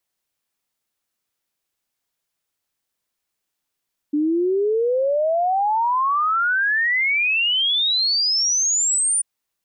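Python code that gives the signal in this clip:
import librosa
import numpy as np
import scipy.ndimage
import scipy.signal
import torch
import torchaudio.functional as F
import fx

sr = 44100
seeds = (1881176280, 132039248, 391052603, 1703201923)

y = fx.ess(sr, length_s=5.09, from_hz=290.0, to_hz=9500.0, level_db=-16.5)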